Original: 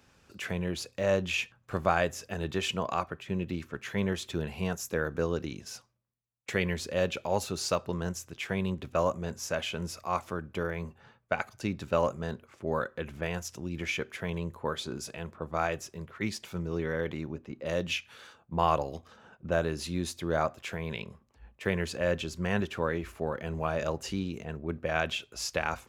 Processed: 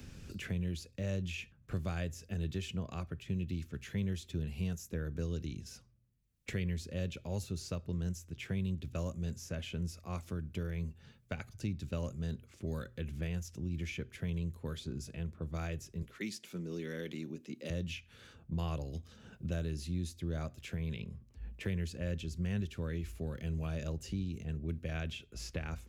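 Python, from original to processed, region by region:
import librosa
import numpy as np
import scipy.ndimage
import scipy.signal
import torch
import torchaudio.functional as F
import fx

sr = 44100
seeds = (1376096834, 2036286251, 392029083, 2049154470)

y = fx.chain(x, sr, fx.highpass(hz=220.0, slope=24),
    fx.peak_eq(hz=9300.0, db=9.0, octaves=3.0), at=(16.02, 17.7))
y = fx.tone_stack(y, sr, knobs='10-0-1')
y = fx.hum_notches(y, sr, base_hz=60, count=2)
y = fx.band_squash(y, sr, depth_pct=70)
y = F.gain(torch.from_numpy(y), 12.0).numpy()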